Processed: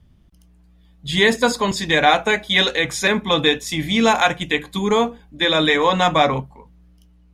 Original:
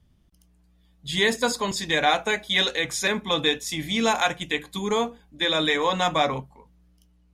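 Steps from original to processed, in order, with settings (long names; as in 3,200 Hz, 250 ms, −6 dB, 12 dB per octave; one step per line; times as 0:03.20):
bass and treble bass +2 dB, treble −5 dB
level +6.5 dB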